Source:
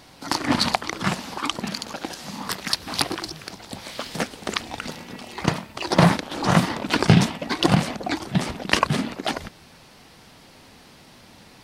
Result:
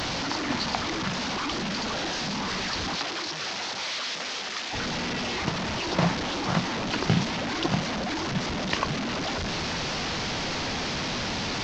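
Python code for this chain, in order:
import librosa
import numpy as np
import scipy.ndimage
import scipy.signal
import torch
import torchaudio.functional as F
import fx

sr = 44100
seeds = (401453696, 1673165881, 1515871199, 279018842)

y = fx.delta_mod(x, sr, bps=32000, step_db=-15.0)
y = fx.highpass(y, sr, hz=fx.line((2.95, 510.0), (4.72, 1300.0)), slope=6, at=(2.95, 4.72), fade=0.02)
y = y * 10.0 ** (-8.5 / 20.0)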